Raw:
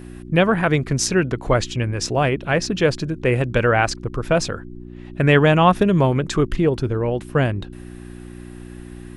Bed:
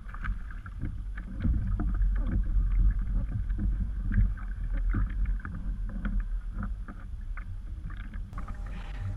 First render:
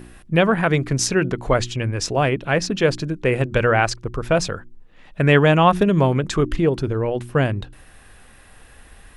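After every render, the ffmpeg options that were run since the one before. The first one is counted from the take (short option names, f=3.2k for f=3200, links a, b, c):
-af "bandreject=f=60:t=h:w=4,bandreject=f=120:t=h:w=4,bandreject=f=180:t=h:w=4,bandreject=f=240:t=h:w=4,bandreject=f=300:t=h:w=4,bandreject=f=360:t=h:w=4"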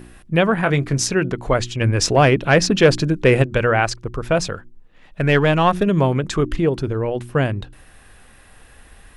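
-filter_complex "[0:a]asettb=1/sr,asplit=3[a][b][c];[a]atrim=end=0.614[d];[b]atrim=start=0.61:end=1.03,asetpts=PTS-STARTPTS,afade=t=in:d=0.004:c=qsin,afade=t=out:st=0.416:d=0.004:c=qsin,asplit=2[e][f];[f]adelay=21,volume=-10dB[g];[e][g]amix=inputs=2:normalize=0,atrim=end_sample=18522[h];[c]atrim=start=1.026[i];[d][h]acrossfade=d=0.004:c1=hsin:c2=qsin[j];[j][i]acrossfade=d=0.004:c1=qsin:c2=hsin,asplit=3[k][l][m];[k]afade=t=out:st=1.8:d=0.02[n];[l]acontrast=60,afade=t=in:st=1.8:d=0.02,afade=t=out:st=3.42:d=0.02[o];[m]afade=t=in:st=3.42:d=0.02[p];[n][o][p]amix=inputs=3:normalize=0,asplit=3[q][r][s];[q]afade=t=out:st=4.54:d=0.02[t];[r]aeval=exprs='if(lt(val(0),0),0.708*val(0),val(0))':c=same,afade=t=in:st=4.54:d=0.02,afade=t=out:st=5.85:d=0.02[u];[s]afade=t=in:st=5.85:d=0.02[v];[t][u][v]amix=inputs=3:normalize=0"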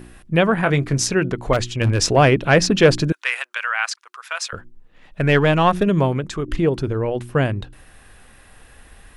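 -filter_complex "[0:a]asettb=1/sr,asplit=3[a][b][c];[a]atrim=end=1.534[d];[b]atrim=start=1.53:end=1.99,asetpts=PTS-STARTPTS,afade=t=in:d=0.004:c=qsin,afade=t=out:st=0.456:d=0.004:c=qsin,aeval=exprs='0.299*(abs(mod(val(0)/0.299+3,4)-2)-1)':c=same[e];[c]atrim=start=1.986[f];[d][e]acrossfade=d=0.004:c1=hsin:c2=qsin[g];[g][f]acrossfade=d=0.004:c1=qsin:c2=hsin,asettb=1/sr,asplit=3[h][i][j];[h]atrim=end=3.124[k];[i]atrim=start=3.12:end=4.53,asetpts=PTS-STARTPTS,afade=t=in:d=0.004:c=qsin,afade=t=out:st=1.406:d=0.004:c=qsin,highpass=f=1.1k:w=0.5412,highpass=f=1.1k:w=1.3066[l];[j]atrim=start=4.526[m];[k][l]acrossfade=d=0.004:c1=hsin:c2=qsin[n];[n][m]acrossfade=d=0.004:c1=qsin:c2=hsin,asplit=2[o][p];[o]atrim=end=6.48,asetpts=PTS-STARTPTS,afade=t=out:st=5.92:d=0.56:silence=0.398107[q];[p]atrim=start=6.48,asetpts=PTS-STARTPTS,afade=t=in:d=0.004:c=hsin:silence=0.398107[r];[q][r]concat=n=2:v=0:a=1"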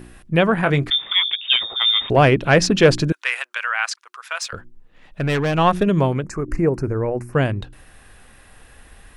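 -filter_complex "[0:a]asettb=1/sr,asplit=3[a][b][c];[a]atrim=end=0.904[d];[b]atrim=start=0.9:end=2.1,asetpts=PTS-STARTPTS,afade=t=in:d=0.004:c=qsin,afade=t=out:st=1.196:d=0.004:c=qsin,lowpass=f=3.1k:t=q:w=0.5098,lowpass=f=3.1k:t=q:w=0.6013,lowpass=f=3.1k:t=q:w=0.9,lowpass=f=3.1k:t=q:w=2.563,afreqshift=-3700[e];[c]atrim=start=2.096[f];[d][e]acrossfade=d=0.004:c1=hsin:c2=qsin[g];[g][f]acrossfade=d=0.004:c1=qsin:c2=hsin,asettb=1/sr,asplit=3[h][i][j];[h]atrim=end=4.424[k];[i]atrim=start=4.42:end=5.58,asetpts=PTS-STARTPTS,afade=t=in:d=0.004:c=qsin,afade=t=out:st=1.156:d=0.004:c=qsin,aeval=exprs='(tanh(6.31*val(0)+0.1)-tanh(0.1))/6.31':c=same[l];[j]atrim=start=5.576[m];[k][l]acrossfade=d=0.004:c1=hsin:c2=qsin[n];[n][m]acrossfade=d=0.004:c1=qsin:c2=hsin,asettb=1/sr,asplit=3[o][p][q];[o]atrim=end=6.234[r];[p]atrim=start=6.23:end=7.33,asetpts=PTS-STARTPTS,afade=t=in:d=0.004:c=qsin,afade=t=out:st=1.096:d=0.004:c=qsin,asuperstop=centerf=3400:order=4:qfactor=1.1[s];[q]atrim=start=7.326[t];[r][s]acrossfade=d=0.004:c1=hsin:c2=qsin[u];[u][t]acrossfade=d=0.004:c1=qsin:c2=hsin"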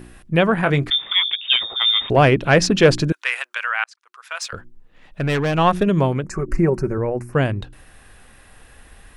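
-filter_complex "[0:a]asettb=1/sr,asplit=3[a][b][c];[a]atrim=end=6.304[d];[b]atrim=start=6.3:end=6.98,asetpts=PTS-STARTPTS,afade=t=in:d=0.004:c=qsin,afade=t=out:st=0.676:d=0.004:c=qsin,aecho=1:1:5.3:0.65,atrim=end_sample=29988[e];[c]atrim=start=6.976[f];[d][e]acrossfade=d=0.004:c1=hsin:c2=qsin[g];[g][f]acrossfade=d=0.004:c1=qsin:c2=hsin,asplit=2[h][i];[h]atrim=end=3.84,asetpts=PTS-STARTPTS,afade=t=out:st=3.836:d=0.004:c=hsin[j];[i]atrim=start=3.84,asetpts=PTS-STARTPTS,afade=t=in:d=0.67[k];[j][k]concat=n=2:v=0:a=1"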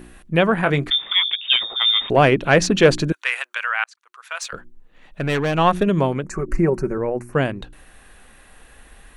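-af "equalizer=f=99:t=o:w=0.48:g=-14.5,bandreject=f=5.1k:w=10"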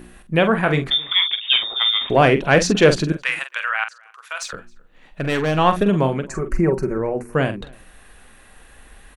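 -filter_complex "[0:a]asplit=2[a][b];[b]adelay=45,volume=-9.5dB[c];[a][c]amix=inputs=2:normalize=0,asplit=2[d][e];[e]adelay=268.2,volume=-26dB,highshelf=f=4k:g=-6.04[f];[d][f]amix=inputs=2:normalize=0"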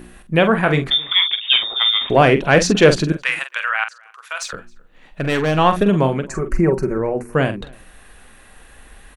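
-af "volume=2dB,alimiter=limit=-1dB:level=0:latency=1"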